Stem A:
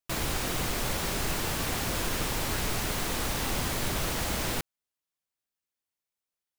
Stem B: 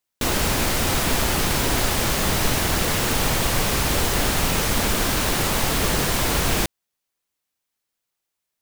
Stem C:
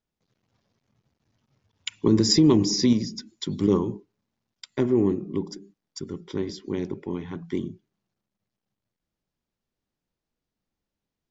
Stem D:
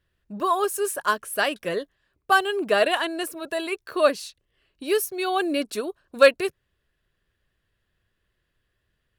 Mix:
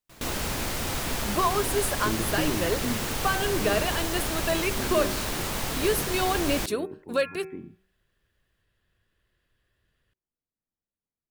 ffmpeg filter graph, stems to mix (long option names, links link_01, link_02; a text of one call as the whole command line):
ffmpeg -i stem1.wav -i stem2.wav -i stem3.wav -i stem4.wav -filter_complex "[0:a]volume=-19.5dB[link_01];[1:a]volume=-8.5dB[link_02];[2:a]lowpass=frequency=2100:width=0.5412,lowpass=frequency=2100:width=1.3066,volume=-11.5dB[link_03];[3:a]bandreject=frequency=153.5:width_type=h:width=4,bandreject=frequency=307:width_type=h:width=4,bandreject=frequency=460.5:width_type=h:width=4,bandreject=frequency=614:width_type=h:width=4,bandreject=frequency=767.5:width_type=h:width=4,bandreject=frequency=921:width_type=h:width=4,bandreject=frequency=1074.5:width_type=h:width=4,bandreject=frequency=1228:width_type=h:width=4,bandreject=frequency=1381.5:width_type=h:width=4,bandreject=frequency=1535:width_type=h:width=4,bandreject=frequency=1688.5:width_type=h:width=4,bandreject=frequency=1842:width_type=h:width=4,bandreject=frequency=1995.5:width_type=h:width=4,bandreject=frequency=2149:width_type=h:width=4,bandreject=frequency=2302.5:width_type=h:width=4,bandreject=frequency=2456:width_type=h:width=4,bandreject=frequency=2609.5:width_type=h:width=4,alimiter=limit=-17dB:level=0:latency=1:release=422,adelay=950,volume=1dB[link_04];[link_01][link_02][link_03][link_04]amix=inputs=4:normalize=0,bandreject=frequency=189.7:width_type=h:width=4,bandreject=frequency=379.4:width_type=h:width=4" out.wav